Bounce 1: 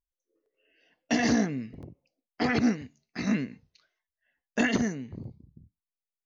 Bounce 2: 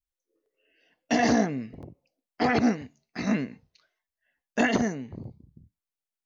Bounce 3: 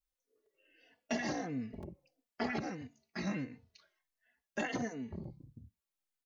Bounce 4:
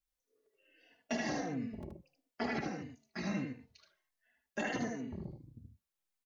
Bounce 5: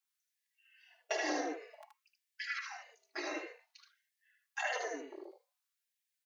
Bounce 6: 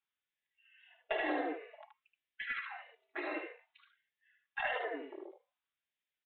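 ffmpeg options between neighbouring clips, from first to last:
ffmpeg -i in.wav -af "adynamicequalizer=threshold=0.00631:dfrequency=740:dqfactor=1:tfrequency=740:tqfactor=1:attack=5:release=100:ratio=0.375:range=4:mode=boostabove:tftype=bell" out.wav
ffmpeg -i in.wav -filter_complex "[0:a]acompressor=threshold=-40dB:ratio=2,asplit=2[link_01][link_02];[link_02]adelay=3.3,afreqshift=-1.5[link_03];[link_01][link_03]amix=inputs=2:normalize=1,volume=2.5dB" out.wav
ffmpeg -i in.wav -af "aecho=1:1:76:0.596,volume=-1dB" out.wav
ffmpeg -i in.wav -af "afftfilt=real='re*gte(b*sr/1024,270*pow(1600/270,0.5+0.5*sin(2*PI*0.54*pts/sr)))':imag='im*gte(b*sr/1024,270*pow(1600/270,0.5+0.5*sin(2*PI*0.54*pts/sr)))':win_size=1024:overlap=0.75,volume=3dB" out.wav
ffmpeg -i in.wav -filter_complex "[0:a]acrossover=split=1900[link_01][link_02];[link_02]aeval=exprs='clip(val(0),-1,0.01)':channel_layout=same[link_03];[link_01][link_03]amix=inputs=2:normalize=0,aresample=8000,aresample=44100,volume=1dB" out.wav

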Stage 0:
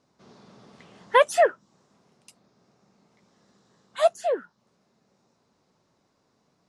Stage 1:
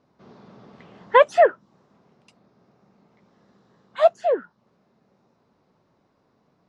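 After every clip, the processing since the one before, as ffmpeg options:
ffmpeg -i in.wav -af "lowpass=5300,highshelf=frequency=3100:gain=-10.5,volume=4.5dB" out.wav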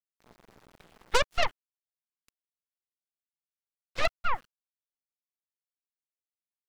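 ffmpeg -i in.wav -af "acompressor=threshold=-32dB:ratio=2,aeval=exprs='0.15*(cos(1*acos(clip(val(0)/0.15,-1,1)))-cos(1*PI/2))+0.0596*(cos(3*acos(clip(val(0)/0.15,-1,1)))-cos(3*PI/2))+0.0531*(cos(6*acos(clip(val(0)/0.15,-1,1)))-cos(6*PI/2))':channel_layout=same,aeval=exprs='val(0)*gte(abs(val(0)),0.00251)':channel_layout=same" out.wav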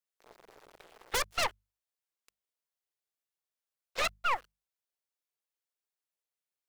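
ffmpeg -i in.wav -af "lowshelf=frequency=310:width_type=q:width=1.5:gain=-9.5,bandreject=frequency=50:width_type=h:width=6,bandreject=frequency=100:width_type=h:width=6,bandreject=frequency=150:width_type=h:width=6,bandreject=frequency=200:width_type=h:width=6,aeval=exprs='0.0562*(abs(mod(val(0)/0.0562+3,4)-2)-1)':channel_layout=same,volume=1.5dB" out.wav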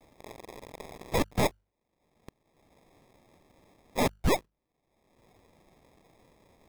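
ffmpeg -i in.wav -filter_complex "[0:a]asplit=2[link_01][link_02];[link_02]acompressor=mode=upward:threshold=-33dB:ratio=2.5,volume=-2.5dB[link_03];[link_01][link_03]amix=inputs=2:normalize=0,acrusher=samples=30:mix=1:aa=0.000001" out.wav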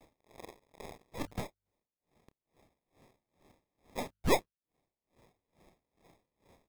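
ffmpeg -i in.wav -filter_complex "[0:a]asplit=2[link_01][link_02];[link_02]adelay=29,volume=-12dB[link_03];[link_01][link_03]amix=inputs=2:normalize=0,aeval=exprs='val(0)*pow(10,-27*(0.5-0.5*cos(2*PI*2.3*n/s))/20)':channel_layout=same" out.wav

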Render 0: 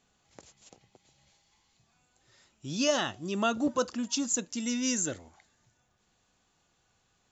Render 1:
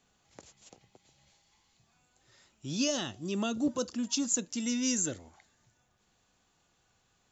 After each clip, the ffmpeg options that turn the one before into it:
ffmpeg -i in.wav -filter_complex "[0:a]acrossover=split=470|3000[link_01][link_02][link_03];[link_02]acompressor=threshold=-45dB:ratio=2.5[link_04];[link_01][link_04][link_03]amix=inputs=3:normalize=0" out.wav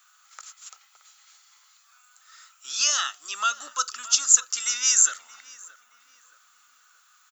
ffmpeg -i in.wav -filter_complex "[0:a]highpass=frequency=1300:width_type=q:width=9.3,aemphasis=mode=production:type=riaa,asplit=2[link_01][link_02];[link_02]adelay=623,lowpass=frequency=2200:poles=1,volume=-17dB,asplit=2[link_03][link_04];[link_04]adelay=623,lowpass=frequency=2200:poles=1,volume=0.47,asplit=2[link_05][link_06];[link_06]adelay=623,lowpass=frequency=2200:poles=1,volume=0.47,asplit=2[link_07][link_08];[link_08]adelay=623,lowpass=frequency=2200:poles=1,volume=0.47[link_09];[link_01][link_03][link_05][link_07][link_09]amix=inputs=5:normalize=0,volume=2.5dB" out.wav

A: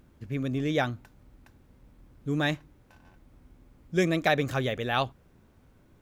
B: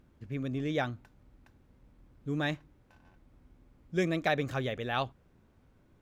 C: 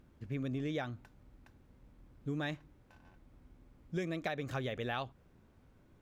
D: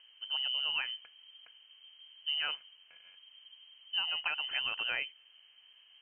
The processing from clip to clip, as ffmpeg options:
ffmpeg -i in.wav -af "highshelf=frequency=7600:gain=-7.5,volume=-4.5dB" out.wav
ffmpeg -i in.wav -af "acompressor=threshold=-33dB:ratio=12" out.wav
ffmpeg -i in.wav -af "lowpass=frequency=2700:width_type=q:width=0.5098,lowpass=frequency=2700:width_type=q:width=0.6013,lowpass=frequency=2700:width_type=q:width=0.9,lowpass=frequency=2700:width_type=q:width=2.563,afreqshift=-3200,volume=2.5dB" out.wav

